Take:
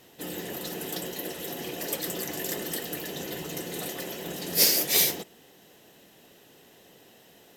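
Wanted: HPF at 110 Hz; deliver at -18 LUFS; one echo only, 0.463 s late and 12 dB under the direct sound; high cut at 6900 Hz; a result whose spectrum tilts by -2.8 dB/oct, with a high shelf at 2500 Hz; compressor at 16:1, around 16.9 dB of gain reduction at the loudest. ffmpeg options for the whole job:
-af "highpass=110,lowpass=6.9k,highshelf=f=2.5k:g=6.5,acompressor=threshold=-31dB:ratio=16,aecho=1:1:463:0.251,volume=16.5dB"

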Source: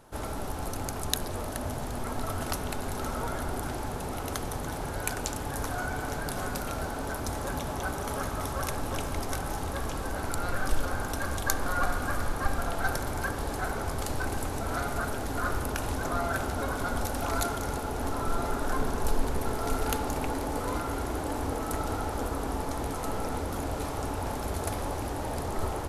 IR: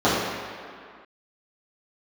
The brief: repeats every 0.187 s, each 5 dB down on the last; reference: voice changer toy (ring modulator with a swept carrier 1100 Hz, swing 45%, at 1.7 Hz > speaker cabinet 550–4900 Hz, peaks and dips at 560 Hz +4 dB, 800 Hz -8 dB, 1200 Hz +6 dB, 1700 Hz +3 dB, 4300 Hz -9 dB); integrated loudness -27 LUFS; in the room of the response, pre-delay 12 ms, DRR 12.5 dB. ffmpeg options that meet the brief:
-filter_complex "[0:a]aecho=1:1:187|374|561|748|935|1122|1309:0.562|0.315|0.176|0.0988|0.0553|0.031|0.0173,asplit=2[a][b];[1:a]atrim=start_sample=2205,adelay=12[c];[b][c]afir=irnorm=-1:irlink=0,volume=-35dB[d];[a][d]amix=inputs=2:normalize=0,aeval=exprs='val(0)*sin(2*PI*1100*n/s+1100*0.45/1.7*sin(2*PI*1.7*n/s))':c=same,highpass=550,equalizer=f=560:t=q:w=4:g=4,equalizer=f=800:t=q:w=4:g=-8,equalizer=f=1.2k:t=q:w=4:g=6,equalizer=f=1.7k:t=q:w=4:g=3,equalizer=f=4.3k:t=q:w=4:g=-9,lowpass=f=4.9k:w=0.5412,lowpass=f=4.9k:w=1.3066,volume=3dB"

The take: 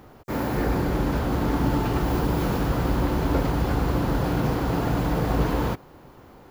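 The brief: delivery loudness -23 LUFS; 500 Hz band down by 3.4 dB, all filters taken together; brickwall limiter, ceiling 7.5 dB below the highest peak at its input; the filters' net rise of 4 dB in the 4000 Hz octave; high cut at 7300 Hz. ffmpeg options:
-af "lowpass=7.3k,equalizer=f=500:t=o:g=-4.5,equalizer=f=4k:t=o:g=5.5,volume=5.5dB,alimiter=limit=-13dB:level=0:latency=1"

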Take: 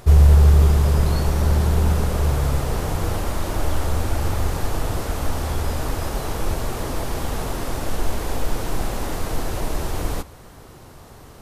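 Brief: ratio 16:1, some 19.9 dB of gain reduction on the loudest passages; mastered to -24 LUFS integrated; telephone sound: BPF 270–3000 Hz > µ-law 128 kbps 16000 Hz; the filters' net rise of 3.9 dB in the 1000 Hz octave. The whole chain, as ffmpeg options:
-af "equalizer=f=1k:t=o:g=5,acompressor=threshold=-28dB:ratio=16,highpass=270,lowpass=3k,volume=16dB" -ar 16000 -c:a pcm_mulaw

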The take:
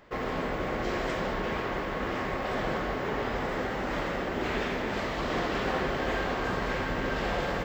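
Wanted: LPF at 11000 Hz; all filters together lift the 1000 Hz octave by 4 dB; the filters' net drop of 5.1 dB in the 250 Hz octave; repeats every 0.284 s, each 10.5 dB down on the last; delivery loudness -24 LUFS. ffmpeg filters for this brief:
-af "lowpass=11k,equalizer=f=250:t=o:g=-7.5,equalizer=f=1k:t=o:g=5.5,aecho=1:1:284|568|852:0.299|0.0896|0.0269,volume=5.5dB"

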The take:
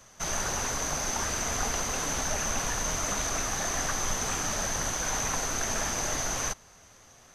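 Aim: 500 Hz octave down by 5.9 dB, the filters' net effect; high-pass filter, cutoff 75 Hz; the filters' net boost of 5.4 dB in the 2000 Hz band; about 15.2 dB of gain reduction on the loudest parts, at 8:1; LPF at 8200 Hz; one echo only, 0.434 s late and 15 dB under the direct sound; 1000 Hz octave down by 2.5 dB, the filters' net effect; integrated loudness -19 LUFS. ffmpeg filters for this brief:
-af "highpass=75,lowpass=8.2k,equalizer=f=500:t=o:g=-7,equalizer=f=1k:t=o:g=-4,equalizer=f=2k:t=o:g=8.5,acompressor=threshold=-43dB:ratio=8,aecho=1:1:434:0.178,volume=24.5dB"

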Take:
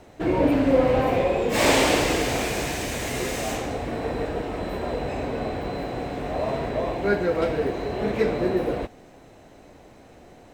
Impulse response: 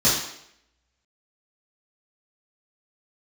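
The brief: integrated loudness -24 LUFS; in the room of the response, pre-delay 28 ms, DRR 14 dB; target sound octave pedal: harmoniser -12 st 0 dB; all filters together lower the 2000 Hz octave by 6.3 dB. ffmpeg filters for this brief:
-filter_complex "[0:a]equalizer=f=2k:t=o:g=-8,asplit=2[a][b];[1:a]atrim=start_sample=2205,adelay=28[c];[b][c]afir=irnorm=-1:irlink=0,volume=-31dB[d];[a][d]amix=inputs=2:normalize=0,asplit=2[e][f];[f]asetrate=22050,aresample=44100,atempo=2,volume=0dB[g];[e][g]amix=inputs=2:normalize=0,volume=-1.5dB"

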